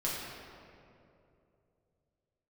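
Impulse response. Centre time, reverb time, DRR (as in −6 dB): 128 ms, 2.7 s, −7.0 dB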